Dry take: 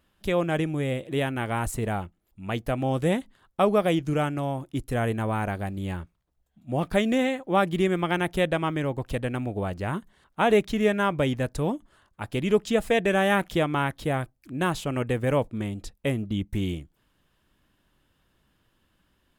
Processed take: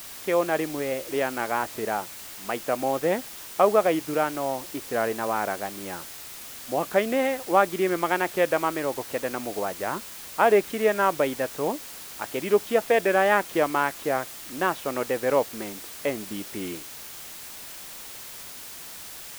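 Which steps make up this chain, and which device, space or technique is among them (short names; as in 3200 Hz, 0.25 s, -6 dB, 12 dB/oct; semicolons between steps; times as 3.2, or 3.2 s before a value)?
wax cylinder (BPF 400–2000 Hz; wow and flutter; white noise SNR 14 dB); gain +4 dB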